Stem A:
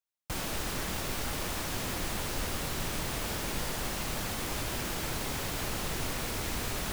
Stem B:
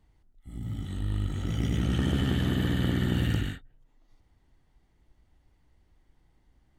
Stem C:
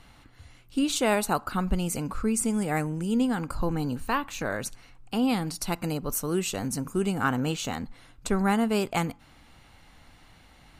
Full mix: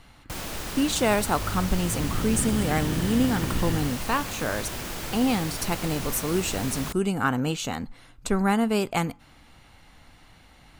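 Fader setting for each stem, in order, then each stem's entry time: +0.5 dB, -3.5 dB, +1.5 dB; 0.00 s, 0.40 s, 0.00 s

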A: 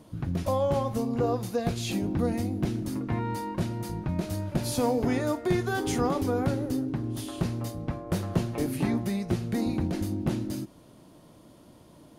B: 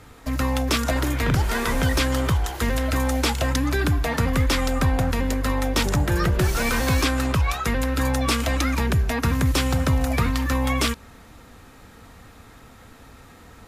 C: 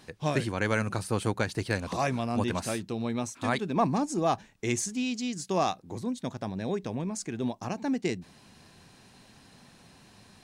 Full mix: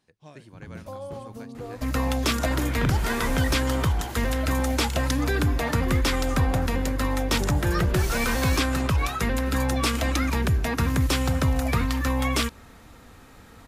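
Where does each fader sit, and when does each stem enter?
-11.0 dB, -2.0 dB, -18.5 dB; 0.40 s, 1.55 s, 0.00 s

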